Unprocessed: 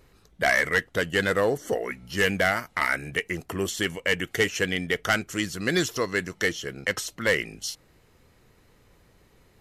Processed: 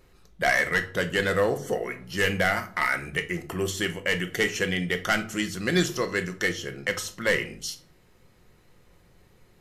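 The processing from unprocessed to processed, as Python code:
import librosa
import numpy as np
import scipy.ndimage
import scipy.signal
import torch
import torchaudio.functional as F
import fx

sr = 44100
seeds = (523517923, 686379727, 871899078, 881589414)

y = fx.room_shoebox(x, sr, seeds[0], volume_m3=430.0, walls='furnished', distance_m=0.94)
y = y * librosa.db_to_amplitude(-1.5)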